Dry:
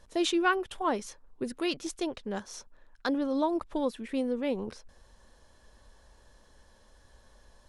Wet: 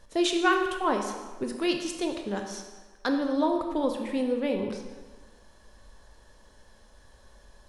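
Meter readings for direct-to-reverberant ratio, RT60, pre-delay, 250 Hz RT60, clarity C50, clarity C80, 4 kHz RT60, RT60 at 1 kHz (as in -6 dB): 3.5 dB, 1.4 s, 20 ms, 1.4 s, 5.5 dB, 7.5 dB, 1.1 s, 1.4 s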